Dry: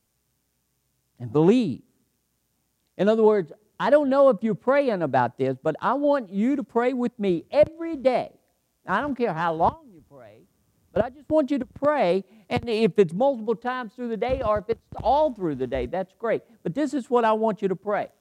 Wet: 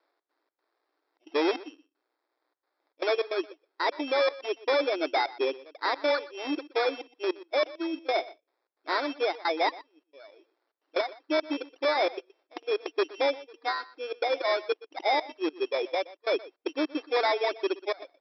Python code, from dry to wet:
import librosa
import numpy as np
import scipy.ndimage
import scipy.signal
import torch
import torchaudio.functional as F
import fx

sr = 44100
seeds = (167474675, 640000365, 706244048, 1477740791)

y = fx.dereverb_blind(x, sr, rt60_s=1.2)
y = fx.sample_hold(y, sr, seeds[0], rate_hz=2900.0, jitter_pct=0)
y = np.clip(y, -10.0 ** (-21.5 / 20.0), 10.0 ** (-21.5 / 20.0))
y = fx.step_gate(y, sr, bpm=154, pattern='xx.xx.xxxxxx.x', floor_db=-24.0, edge_ms=4.5)
y = fx.brickwall_bandpass(y, sr, low_hz=280.0, high_hz=5800.0)
y = y + 10.0 ** (-19.0 / 20.0) * np.pad(y, (int(122 * sr / 1000.0), 0))[:len(y)]